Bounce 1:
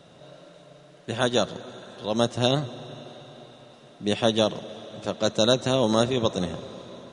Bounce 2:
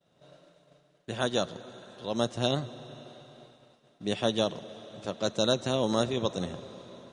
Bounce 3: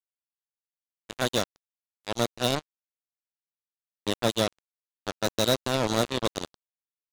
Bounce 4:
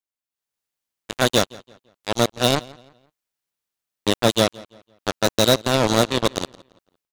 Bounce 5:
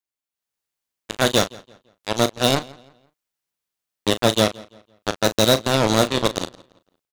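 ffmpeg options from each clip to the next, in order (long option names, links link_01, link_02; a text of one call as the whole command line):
ffmpeg -i in.wav -af "agate=range=-33dB:threshold=-43dB:ratio=3:detection=peak,volume=-5.5dB" out.wav
ffmpeg -i in.wav -af "acrusher=bits=3:mix=0:aa=0.5,volume=2dB" out.wav
ffmpeg -i in.wav -filter_complex "[0:a]dynaudnorm=framelen=280:gausssize=3:maxgain=11.5dB,asplit=2[link_01][link_02];[link_02]adelay=169,lowpass=frequency=5000:poles=1,volume=-22dB,asplit=2[link_03][link_04];[link_04]adelay=169,lowpass=frequency=5000:poles=1,volume=0.36,asplit=2[link_05][link_06];[link_06]adelay=169,lowpass=frequency=5000:poles=1,volume=0.36[link_07];[link_01][link_03][link_05][link_07]amix=inputs=4:normalize=0" out.wav
ffmpeg -i in.wav -filter_complex "[0:a]asplit=2[link_01][link_02];[link_02]adelay=37,volume=-11.5dB[link_03];[link_01][link_03]amix=inputs=2:normalize=0" out.wav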